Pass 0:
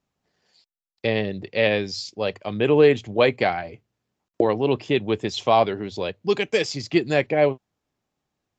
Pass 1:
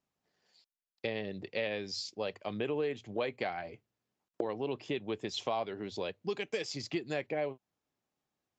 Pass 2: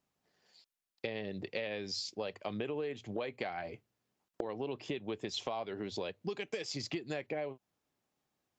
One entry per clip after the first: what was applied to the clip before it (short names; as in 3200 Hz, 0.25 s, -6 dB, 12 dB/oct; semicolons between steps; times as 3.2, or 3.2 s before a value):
compressor 4:1, threshold -25 dBFS, peak gain reduction 12.5 dB; low shelf 110 Hz -9 dB; gain -6.5 dB
compressor 4:1, threshold -38 dBFS, peak gain reduction 9 dB; gain +3 dB